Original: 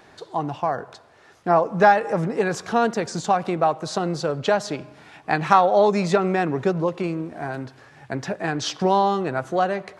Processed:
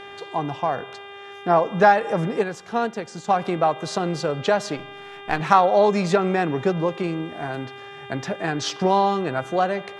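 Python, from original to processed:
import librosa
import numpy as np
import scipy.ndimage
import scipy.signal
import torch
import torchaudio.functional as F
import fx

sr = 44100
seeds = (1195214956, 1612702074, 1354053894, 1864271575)

y = fx.halfwave_gain(x, sr, db=-7.0, at=(4.77, 5.4))
y = fx.dmg_buzz(y, sr, base_hz=400.0, harmonics=9, level_db=-40.0, tilt_db=-3, odd_only=False)
y = fx.upward_expand(y, sr, threshold_db=-28.0, expansion=1.5, at=(2.42, 3.28), fade=0.02)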